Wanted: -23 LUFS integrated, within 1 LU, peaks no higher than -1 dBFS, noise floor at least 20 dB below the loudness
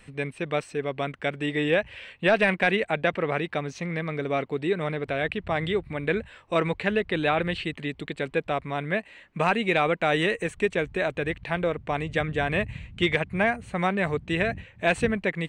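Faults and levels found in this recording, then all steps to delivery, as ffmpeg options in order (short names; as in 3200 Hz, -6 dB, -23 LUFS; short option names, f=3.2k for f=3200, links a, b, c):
loudness -26.5 LUFS; peak -9.0 dBFS; loudness target -23.0 LUFS
-> -af "volume=3.5dB"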